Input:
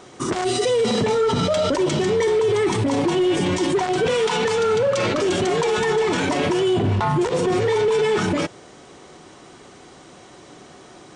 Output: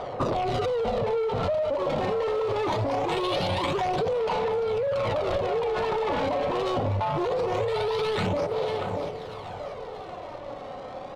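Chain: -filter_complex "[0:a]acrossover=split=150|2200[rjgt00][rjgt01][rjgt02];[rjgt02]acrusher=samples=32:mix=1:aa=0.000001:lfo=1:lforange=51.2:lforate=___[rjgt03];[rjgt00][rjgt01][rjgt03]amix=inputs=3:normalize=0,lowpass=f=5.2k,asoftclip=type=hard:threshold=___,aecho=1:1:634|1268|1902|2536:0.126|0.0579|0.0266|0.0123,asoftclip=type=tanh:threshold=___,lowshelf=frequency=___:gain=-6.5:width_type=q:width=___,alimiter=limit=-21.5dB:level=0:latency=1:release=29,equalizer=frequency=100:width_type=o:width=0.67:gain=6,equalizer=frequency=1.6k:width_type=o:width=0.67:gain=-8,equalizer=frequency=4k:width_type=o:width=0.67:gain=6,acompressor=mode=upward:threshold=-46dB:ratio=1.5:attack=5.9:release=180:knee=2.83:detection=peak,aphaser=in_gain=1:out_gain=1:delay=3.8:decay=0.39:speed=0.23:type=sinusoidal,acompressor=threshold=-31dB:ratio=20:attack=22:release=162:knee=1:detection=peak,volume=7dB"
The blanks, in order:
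0.22, -17dB, -19dB, 430, 3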